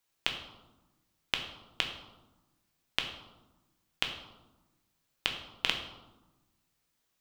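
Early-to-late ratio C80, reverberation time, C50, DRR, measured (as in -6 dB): 9.0 dB, 1.1 s, 7.5 dB, 3.0 dB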